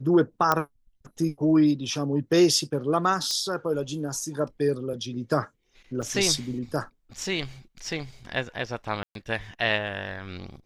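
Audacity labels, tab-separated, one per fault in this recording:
0.520000	0.520000	pop -8 dBFS
3.310000	3.310000	pop -15 dBFS
6.020000	6.030000	gap 5.5 ms
9.030000	9.150000	gap 0.122 s

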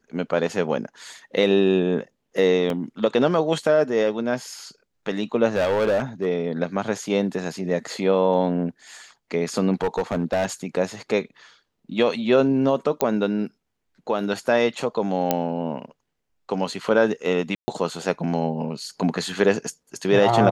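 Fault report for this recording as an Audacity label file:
2.700000	2.700000	gap 2.1 ms
5.550000	6.270000	clipped -17 dBFS
9.810000	10.460000	clipped -17.5 dBFS
13.010000	13.010000	pop -5 dBFS
15.310000	15.310000	pop -5 dBFS
17.550000	17.680000	gap 0.13 s

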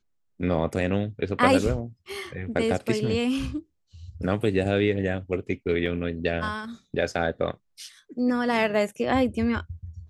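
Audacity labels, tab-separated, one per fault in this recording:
5.860000	5.860000	gap 2.5 ms

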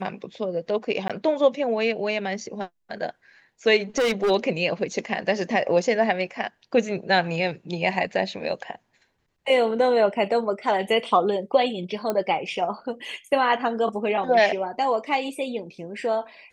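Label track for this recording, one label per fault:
1.080000	1.100000	gap 16 ms
3.980000	4.310000	clipped -18.5 dBFS
12.100000	12.100000	pop -12 dBFS

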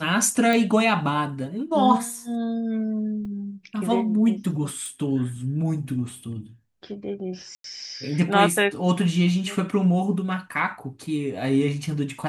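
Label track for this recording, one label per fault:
0.530000	0.530000	pop
3.250000	3.250000	gap 3.2 ms
4.860000	4.860000	pop
7.550000	7.640000	gap 93 ms

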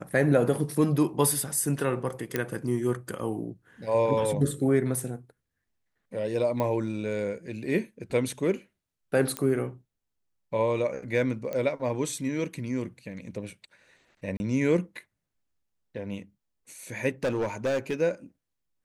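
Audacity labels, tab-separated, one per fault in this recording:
2.360000	2.360000	pop -12 dBFS
6.600000	6.600000	pop -17 dBFS
9.370000	9.370000	pop -14 dBFS
11.530000	11.530000	pop -20 dBFS
14.370000	14.400000	gap 30 ms
17.240000	17.940000	clipped -23 dBFS

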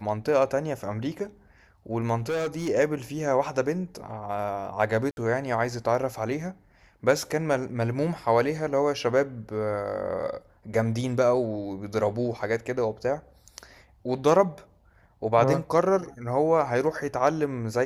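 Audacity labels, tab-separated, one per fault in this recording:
2.170000	2.690000	clipped -24.5 dBFS
5.110000	5.170000	gap 61 ms

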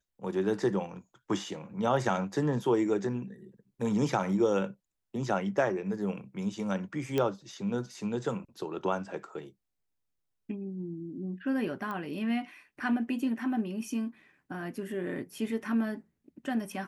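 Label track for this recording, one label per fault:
7.180000	7.180000	pop -16 dBFS
11.910000	11.910000	pop -25 dBFS

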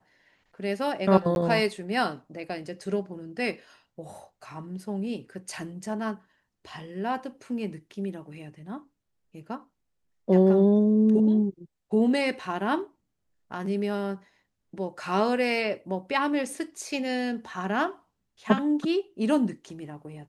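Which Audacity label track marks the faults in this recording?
1.350000	1.360000	gap 11 ms

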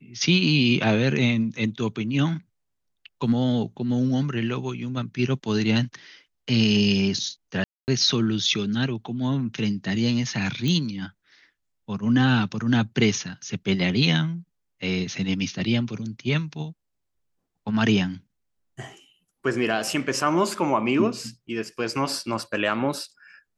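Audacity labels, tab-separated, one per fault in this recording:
7.640000	7.880000	gap 0.239 s
10.680000	10.680000	pop -14 dBFS

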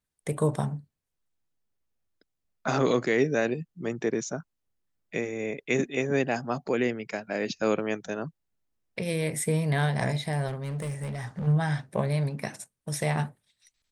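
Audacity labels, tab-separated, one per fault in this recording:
10.470000	11.480000	clipped -29 dBFS

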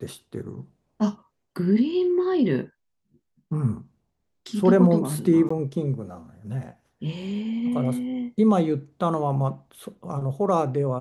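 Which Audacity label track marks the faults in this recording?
5.490000	5.500000	gap 15 ms

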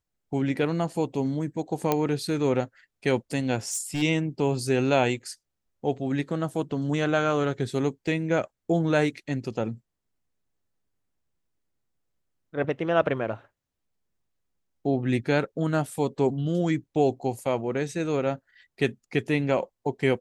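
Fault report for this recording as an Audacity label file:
1.920000	1.920000	pop -9 dBFS
3.670000	4.030000	clipped -24.5 dBFS

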